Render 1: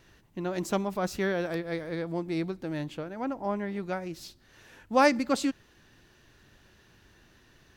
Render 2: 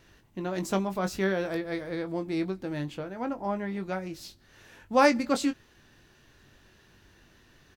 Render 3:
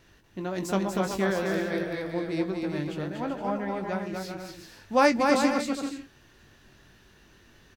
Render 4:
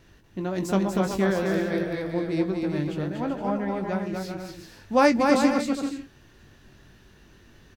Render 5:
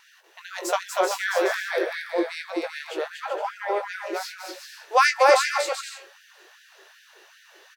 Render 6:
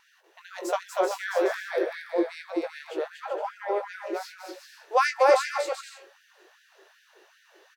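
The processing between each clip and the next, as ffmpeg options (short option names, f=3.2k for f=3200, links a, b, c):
-filter_complex "[0:a]asplit=2[a][b];[b]adelay=21,volume=-8.5dB[c];[a][c]amix=inputs=2:normalize=0"
-af "aecho=1:1:240|384|470.4|522.2|553.3:0.631|0.398|0.251|0.158|0.1"
-af "lowshelf=f=430:g=5.5"
-af "bandreject=f=111.5:t=h:w=4,bandreject=f=223:t=h:w=4,bandreject=f=334.5:t=h:w=4,bandreject=f=446:t=h:w=4,bandreject=f=557.5:t=h:w=4,bandreject=f=669:t=h:w=4,bandreject=f=780.5:t=h:w=4,bandreject=f=892:t=h:w=4,bandreject=f=1.0035k:t=h:w=4,bandreject=f=1.115k:t=h:w=4,bandreject=f=1.2265k:t=h:w=4,bandreject=f=1.338k:t=h:w=4,bandreject=f=1.4495k:t=h:w=4,bandreject=f=1.561k:t=h:w=4,bandreject=f=1.6725k:t=h:w=4,bandreject=f=1.784k:t=h:w=4,bandreject=f=1.8955k:t=h:w=4,afftfilt=real='re*gte(b*sr/1024,330*pow(1500/330,0.5+0.5*sin(2*PI*2.6*pts/sr)))':imag='im*gte(b*sr/1024,330*pow(1500/330,0.5+0.5*sin(2*PI*2.6*pts/sr)))':win_size=1024:overlap=0.75,volume=7dB"
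-af "tiltshelf=f=860:g=5,volume=-3.5dB"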